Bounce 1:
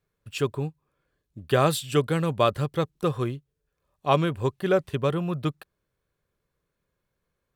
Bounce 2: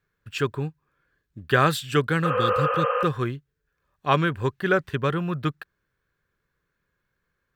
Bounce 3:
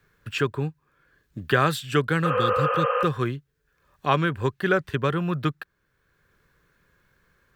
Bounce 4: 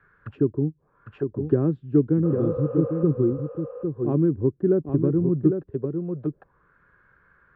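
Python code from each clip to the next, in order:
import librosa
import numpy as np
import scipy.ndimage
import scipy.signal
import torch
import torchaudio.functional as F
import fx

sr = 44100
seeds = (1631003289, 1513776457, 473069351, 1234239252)

y1 = fx.spec_repair(x, sr, seeds[0], start_s=2.27, length_s=0.74, low_hz=450.0, high_hz=3200.0, source='after')
y1 = fx.graphic_eq_15(y1, sr, hz=(630, 1600, 10000), db=(-5, 10, -7))
y1 = y1 * librosa.db_to_amplitude(1.0)
y2 = fx.band_squash(y1, sr, depth_pct=40)
y3 = y2 + 10.0 ** (-6.5 / 20.0) * np.pad(y2, (int(803 * sr / 1000.0), 0))[:len(y2)]
y3 = fx.envelope_lowpass(y3, sr, base_hz=320.0, top_hz=1500.0, q=3.0, full_db=-26.0, direction='down')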